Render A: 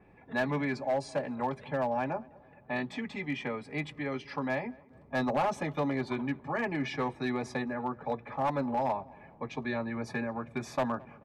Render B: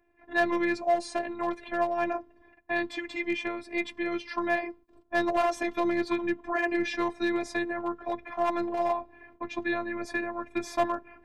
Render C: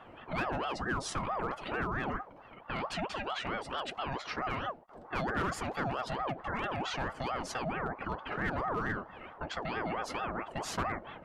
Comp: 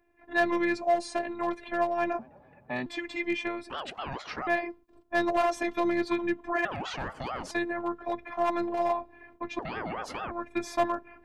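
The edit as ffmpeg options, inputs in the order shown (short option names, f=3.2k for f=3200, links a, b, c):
-filter_complex "[2:a]asplit=3[a][b][c];[1:a]asplit=5[d][e][f][g][h];[d]atrim=end=2.192[i];[0:a]atrim=start=2.188:end=2.862[j];[e]atrim=start=2.858:end=3.702[k];[a]atrim=start=3.698:end=4.472[l];[f]atrim=start=4.468:end=6.652[m];[b]atrim=start=6.648:end=7.512[n];[g]atrim=start=7.508:end=9.592[o];[c]atrim=start=9.588:end=10.312[p];[h]atrim=start=10.308[q];[i][j]acrossfade=d=0.004:c1=hsin:c2=hsin[r];[r][k]acrossfade=d=0.004:c1=hsin:c2=hsin[s];[s][l]acrossfade=d=0.004:c1=hsin:c2=hsin[t];[t][m]acrossfade=d=0.004:c1=hsin:c2=hsin[u];[u][n]acrossfade=d=0.004:c1=hsin:c2=hsin[v];[v][o]acrossfade=d=0.004:c1=hsin:c2=hsin[w];[w][p]acrossfade=d=0.004:c1=hsin:c2=hsin[x];[x][q]acrossfade=d=0.004:c1=hsin:c2=hsin"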